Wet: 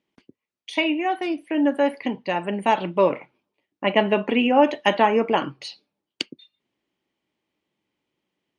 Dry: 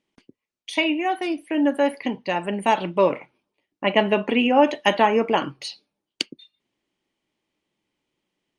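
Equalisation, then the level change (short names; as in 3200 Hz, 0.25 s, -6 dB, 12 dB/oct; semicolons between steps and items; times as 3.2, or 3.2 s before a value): HPF 56 Hz; high shelf 7500 Hz -12 dB; 0.0 dB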